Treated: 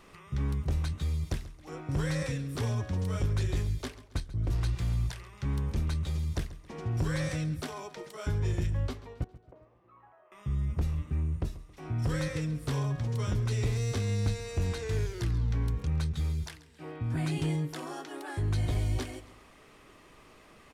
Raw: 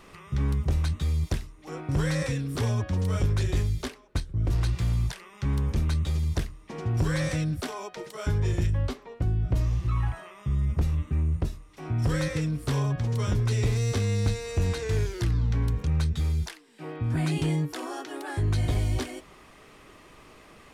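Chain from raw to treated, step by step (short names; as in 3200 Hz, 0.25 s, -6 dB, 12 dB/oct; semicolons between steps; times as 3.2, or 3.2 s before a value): 9.24–10.32 ladder band-pass 670 Hz, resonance 25%; on a send: feedback echo 0.136 s, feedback 44%, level -17.5 dB; on the sum: gain -4.5 dB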